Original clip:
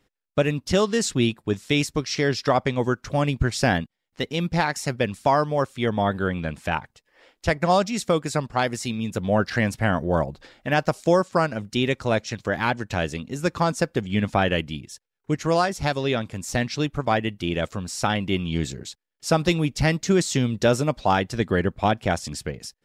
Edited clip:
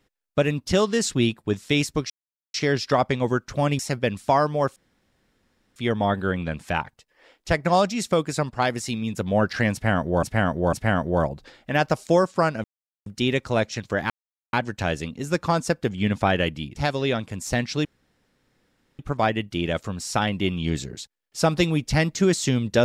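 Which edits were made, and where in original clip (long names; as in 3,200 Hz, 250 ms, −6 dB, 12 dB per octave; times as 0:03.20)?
0:02.10: splice in silence 0.44 s
0:03.35–0:04.76: remove
0:05.73: splice in room tone 1.00 s
0:09.70–0:10.20: repeat, 3 plays
0:11.61: splice in silence 0.42 s
0:12.65: splice in silence 0.43 s
0:14.88–0:15.78: remove
0:16.87: splice in room tone 1.14 s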